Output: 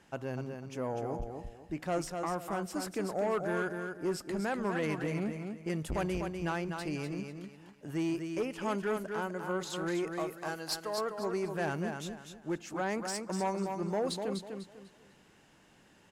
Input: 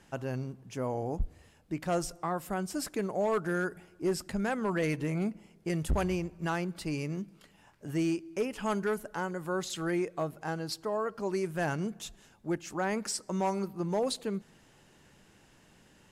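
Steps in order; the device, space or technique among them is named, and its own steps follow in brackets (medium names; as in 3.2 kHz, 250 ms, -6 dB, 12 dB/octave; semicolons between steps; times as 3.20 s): 10.07–10.98 s: tilt EQ +3 dB/octave; feedback delay 248 ms, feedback 29%, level -6.5 dB; tube preamp driven hard (valve stage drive 23 dB, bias 0.25; bass shelf 140 Hz -7.5 dB; treble shelf 4.7 kHz -5 dB)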